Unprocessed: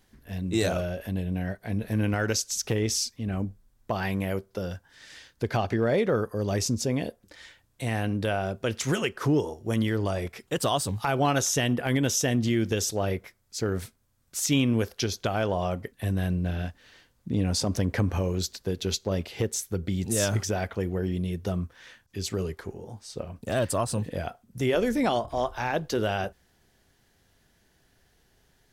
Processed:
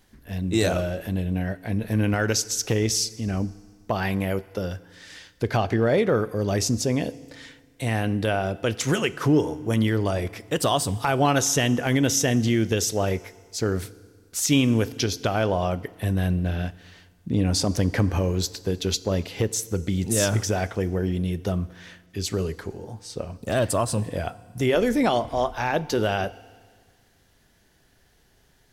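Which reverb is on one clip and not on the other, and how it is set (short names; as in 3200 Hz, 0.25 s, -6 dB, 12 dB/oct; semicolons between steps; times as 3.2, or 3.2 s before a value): FDN reverb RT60 1.7 s, low-frequency decay 1.1×, high-frequency decay 0.95×, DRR 17.5 dB; gain +3.5 dB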